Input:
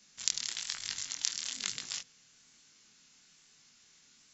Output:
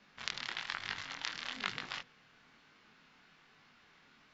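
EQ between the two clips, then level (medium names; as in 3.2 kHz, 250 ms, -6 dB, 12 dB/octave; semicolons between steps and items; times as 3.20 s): distance through air 350 m; peaking EQ 1 kHz +8 dB 2.6 oct; +4.0 dB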